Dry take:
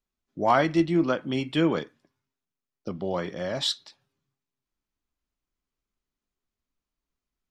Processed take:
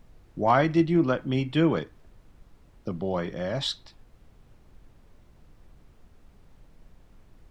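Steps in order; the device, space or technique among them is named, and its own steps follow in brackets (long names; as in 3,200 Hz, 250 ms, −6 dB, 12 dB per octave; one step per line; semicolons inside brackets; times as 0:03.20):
car interior (parametric band 120 Hz +7.5 dB; high-shelf EQ 4,700 Hz −8 dB; brown noise bed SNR 22 dB)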